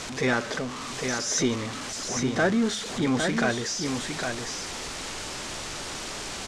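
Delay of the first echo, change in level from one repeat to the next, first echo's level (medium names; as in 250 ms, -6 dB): 807 ms, no regular repeats, -5.5 dB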